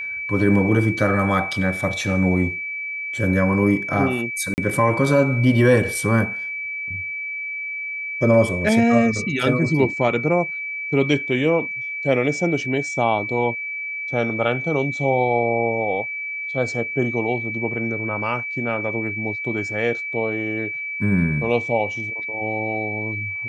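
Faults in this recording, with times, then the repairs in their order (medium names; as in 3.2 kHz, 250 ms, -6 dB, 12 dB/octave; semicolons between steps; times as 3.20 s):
whine 2.3 kHz -26 dBFS
4.54–4.58 s: dropout 39 ms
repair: band-stop 2.3 kHz, Q 30; interpolate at 4.54 s, 39 ms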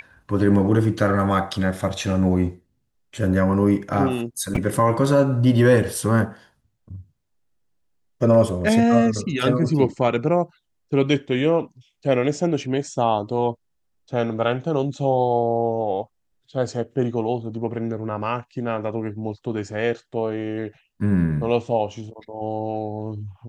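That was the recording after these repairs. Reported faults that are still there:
nothing left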